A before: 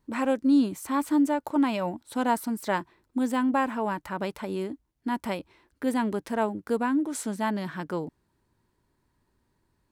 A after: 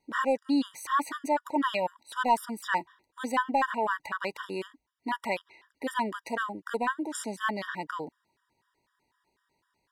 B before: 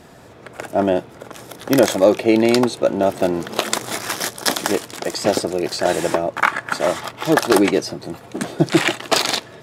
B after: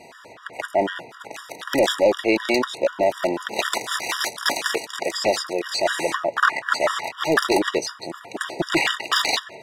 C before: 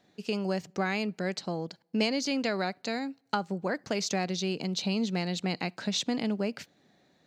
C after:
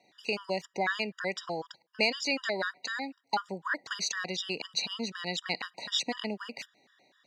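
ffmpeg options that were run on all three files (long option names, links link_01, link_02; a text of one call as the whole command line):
ffmpeg -i in.wav -filter_complex "[0:a]asplit=2[link_01][link_02];[link_02]highpass=frequency=720:poles=1,volume=17dB,asoftclip=type=tanh:threshold=-1dB[link_03];[link_01][link_03]amix=inputs=2:normalize=0,lowpass=frequency=2600:poles=1,volume=-6dB,tiltshelf=frequency=890:gain=-4,afftfilt=real='re*gt(sin(2*PI*4*pts/sr)*(1-2*mod(floor(b*sr/1024/960),2)),0)':imag='im*gt(sin(2*PI*4*pts/sr)*(1-2*mod(floor(b*sr/1024/960),2)),0)':win_size=1024:overlap=0.75,volume=-5dB" out.wav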